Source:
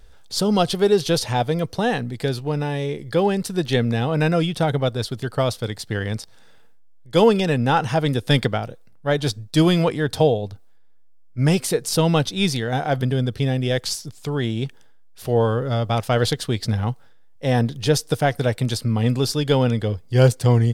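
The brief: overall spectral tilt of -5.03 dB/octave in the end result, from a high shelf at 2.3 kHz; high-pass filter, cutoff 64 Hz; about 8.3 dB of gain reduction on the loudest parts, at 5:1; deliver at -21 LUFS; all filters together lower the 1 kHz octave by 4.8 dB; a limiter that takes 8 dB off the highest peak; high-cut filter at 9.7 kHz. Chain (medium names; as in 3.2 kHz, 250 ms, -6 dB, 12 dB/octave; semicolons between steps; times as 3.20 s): high-pass 64 Hz; low-pass 9.7 kHz; peaking EQ 1 kHz -8 dB; treble shelf 2.3 kHz +4.5 dB; compression 5:1, threshold -20 dBFS; trim +6.5 dB; peak limiter -10 dBFS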